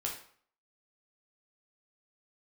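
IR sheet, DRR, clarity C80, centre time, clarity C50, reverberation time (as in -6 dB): -1.5 dB, 10.5 dB, 27 ms, 6.0 dB, 0.55 s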